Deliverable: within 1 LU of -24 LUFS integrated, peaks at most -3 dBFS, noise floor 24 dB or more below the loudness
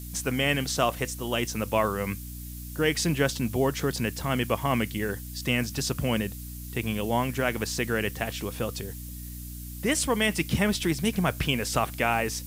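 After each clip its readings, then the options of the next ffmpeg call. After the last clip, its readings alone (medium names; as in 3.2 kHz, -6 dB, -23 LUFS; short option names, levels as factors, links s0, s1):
hum 60 Hz; highest harmonic 300 Hz; hum level -37 dBFS; noise floor -39 dBFS; noise floor target -52 dBFS; loudness -27.5 LUFS; peak level -9.5 dBFS; loudness target -24.0 LUFS
-> -af "bandreject=f=60:t=h:w=6,bandreject=f=120:t=h:w=6,bandreject=f=180:t=h:w=6,bandreject=f=240:t=h:w=6,bandreject=f=300:t=h:w=6"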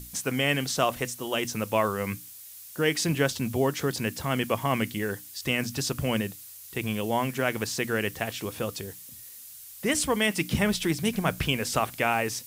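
hum not found; noise floor -46 dBFS; noise floor target -52 dBFS
-> -af "afftdn=nr=6:nf=-46"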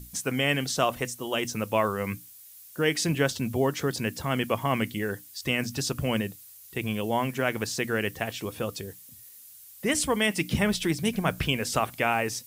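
noise floor -49 dBFS; noise floor target -52 dBFS
-> -af "afftdn=nr=6:nf=-49"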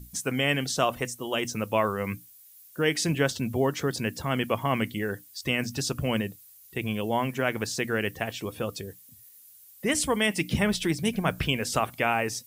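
noise floor -53 dBFS; loudness -28.0 LUFS; peak level -10.0 dBFS; loudness target -24.0 LUFS
-> -af "volume=1.58"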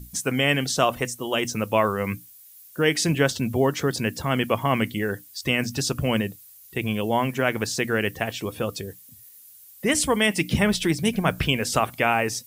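loudness -24.0 LUFS; peak level -6.0 dBFS; noise floor -49 dBFS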